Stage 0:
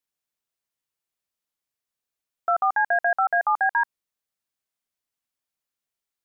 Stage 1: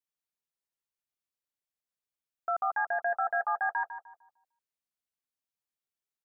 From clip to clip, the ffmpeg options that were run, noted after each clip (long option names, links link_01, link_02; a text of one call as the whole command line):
ffmpeg -i in.wav -filter_complex "[0:a]asplit=2[link_01][link_02];[link_02]adelay=151,lowpass=frequency=1000:poles=1,volume=-7dB,asplit=2[link_03][link_04];[link_04]adelay=151,lowpass=frequency=1000:poles=1,volume=0.42,asplit=2[link_05][link_06];[link_06]adelay=151,lowpass=frequency=1000:poles=1,volume=0.42,asplit=2[link_07][link_08];[link_08]adelay=151,lowpass=frequency=1000:poles=1,volume=0.42,asplit=2[link_09][link_10];[link_10]adelay=151,lowpass=frequency=1000:poles=1,volume=0.42[link_11];[link_01][link_03][link_05][link_07][link_09][link_11]amix=inputs=6:normalize=0,volume=-8.5dB" out.wav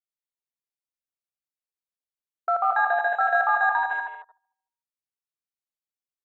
ffmpeg -i in.wav -af "afwtdn=0.00631,aecho=1:1:72.89|163.3|236.2:0.355|0.562|0.398,volume=7dB" out.wav